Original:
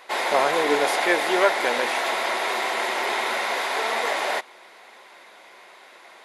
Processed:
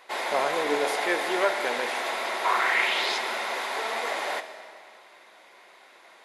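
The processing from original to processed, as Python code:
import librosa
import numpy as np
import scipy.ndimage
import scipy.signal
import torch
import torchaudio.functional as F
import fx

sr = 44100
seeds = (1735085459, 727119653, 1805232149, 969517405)

y = fx.peak_eq(x, sr, hz=fx.line((2.44, 920.0), (3.17, 5400.0)), db=13.5, octaves=0.94, at=(2.44, 3.17), fade=0.02)
y = fx.rev_freeverb(y, sr, rt60_s=2.0, hf_ratio=0.95, predelay_ms=5, drr_db=9.5)
y = y * librosa.db_to_amplitude(-5.5)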